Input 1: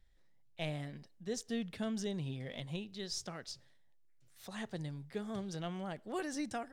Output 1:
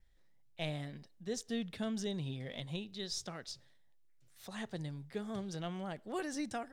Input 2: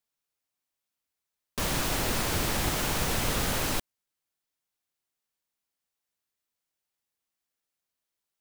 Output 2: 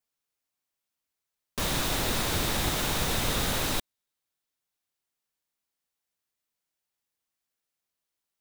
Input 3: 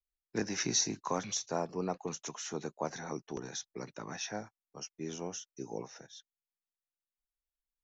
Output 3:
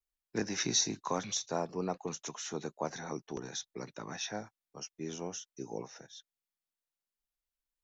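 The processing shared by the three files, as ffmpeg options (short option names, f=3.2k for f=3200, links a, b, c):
-af "adynamicequalizer=threshold=0.00141:dfrequency=3700:dqfactor=7:tfrequency=3700:tqfactor=7:attack=5:release=100:ratio=0.375:range=3.5:mode=boostabove:tftype=bell"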